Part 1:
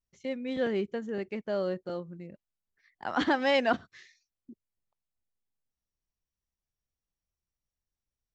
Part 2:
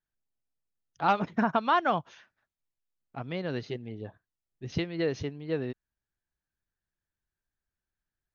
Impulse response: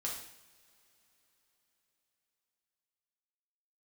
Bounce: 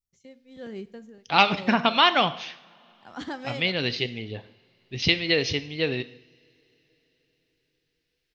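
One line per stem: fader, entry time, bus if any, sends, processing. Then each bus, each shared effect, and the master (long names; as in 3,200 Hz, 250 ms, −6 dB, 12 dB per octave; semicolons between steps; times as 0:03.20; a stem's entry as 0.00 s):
−10.5 dB, 0.00 s, send −13 dB, bass and treble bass +7 dB, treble +10 dB; tremolo along a rectified sine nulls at 1.2 Hz
+2.0 dB, 0.30 s, send −9.5 dB, flat-topped bell 3,400 Hz +15 dB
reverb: on, pre-delay 3 ms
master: no processing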